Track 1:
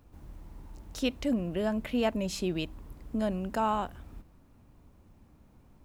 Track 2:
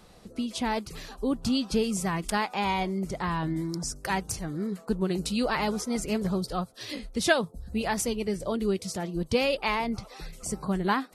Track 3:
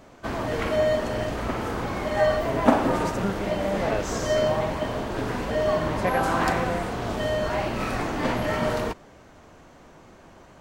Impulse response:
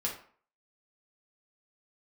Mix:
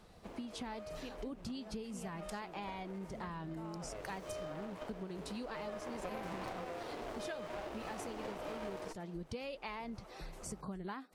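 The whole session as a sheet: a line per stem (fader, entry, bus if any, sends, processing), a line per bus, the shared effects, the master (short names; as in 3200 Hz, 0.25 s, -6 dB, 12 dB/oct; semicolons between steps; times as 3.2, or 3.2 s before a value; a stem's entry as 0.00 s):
-16.5 dB, 0.00 s, no send, dry
-6.0 dB, 0.00 s, no send, high shelf 4300 Hz -5.5 dB
3.79 s -19.5 dB -> 4.17 s -10 dB -> 5.53 s -10 dB -> 5.96 s -3 dB, 0.00 s, no send, inverse Chebyshev high-pass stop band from 160 Hz, stop band 40 dB; running maximum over 17 samples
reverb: off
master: compressor 6:1, threshold -41 dBFS, peak gain reduction 17.5 dB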